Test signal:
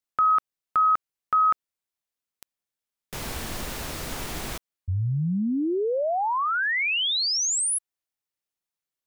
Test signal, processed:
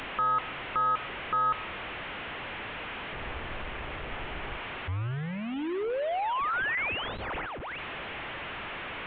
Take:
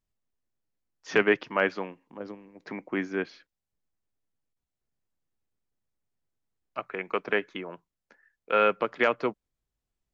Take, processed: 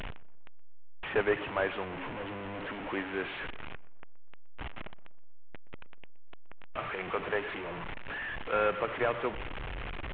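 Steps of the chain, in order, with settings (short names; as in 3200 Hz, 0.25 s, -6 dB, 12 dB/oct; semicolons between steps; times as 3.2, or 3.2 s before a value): delta modulation 16 kbps, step -27.5 dBFS; dynamic EQ 200 Hz, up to -6 dB, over -44 dBFS, Q 1.1; tape echo 0.122 s, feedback 51%, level -17 dB, low-pass 1300 Hz; gain -3.5 dB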